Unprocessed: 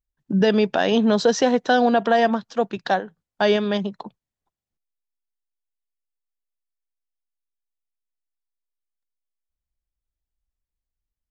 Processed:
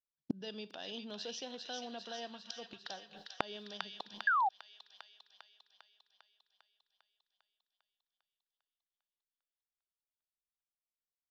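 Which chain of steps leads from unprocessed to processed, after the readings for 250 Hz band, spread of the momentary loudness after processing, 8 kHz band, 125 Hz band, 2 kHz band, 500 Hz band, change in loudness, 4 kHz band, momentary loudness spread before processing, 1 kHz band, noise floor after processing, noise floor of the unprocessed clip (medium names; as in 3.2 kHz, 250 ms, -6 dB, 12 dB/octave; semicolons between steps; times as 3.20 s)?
-25.5 dB, 23 LU, no reading, under -25 dB, -12.0 dB, -27.5 dB, -19.0 dB, -13.0 dB, 8 LU, -14.5 dB, under -85 dBFS, under -85 dBFS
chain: Schroeder reverb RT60 0.38 s, combs from 30 ms, DRR 16.5 dB; expander -47 dBFS; high-order bell 4 kHz +12.5 dB 1.3 oct; inverted gate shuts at -22 dBFS, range -36 dB; feedback echo behind a high-pass 400 ms, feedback 62%, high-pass 1.7 kHz, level -3.5 dB; painted sound fall, 4.27–4.49 s, 730–1700 Hz -25 dBFS; compression 5:1, threshold -38 dBFS, peak gain reduction 12 dB; bass shelf 78 Hz -9.5 dB; trim +8 dB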